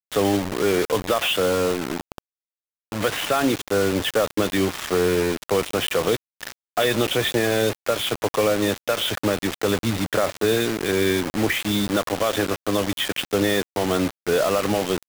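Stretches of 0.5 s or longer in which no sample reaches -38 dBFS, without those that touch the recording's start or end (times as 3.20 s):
2.18–2.92 s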